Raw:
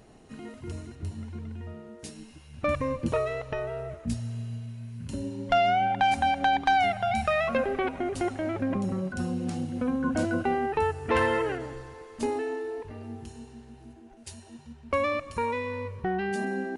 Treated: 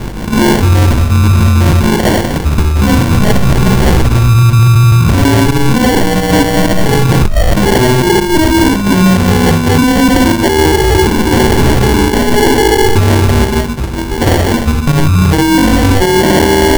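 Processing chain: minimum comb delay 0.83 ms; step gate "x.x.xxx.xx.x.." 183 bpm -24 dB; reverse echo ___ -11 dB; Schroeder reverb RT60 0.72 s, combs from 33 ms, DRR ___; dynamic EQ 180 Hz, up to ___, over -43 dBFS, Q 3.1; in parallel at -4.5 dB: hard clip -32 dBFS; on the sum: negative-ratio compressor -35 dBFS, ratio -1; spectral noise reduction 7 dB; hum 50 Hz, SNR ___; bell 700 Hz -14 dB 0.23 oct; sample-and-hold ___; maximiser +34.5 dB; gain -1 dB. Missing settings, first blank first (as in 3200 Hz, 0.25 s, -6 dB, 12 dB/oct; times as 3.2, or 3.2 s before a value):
54 ms, 1.5 dB, -4 dB, 22 dB, 35×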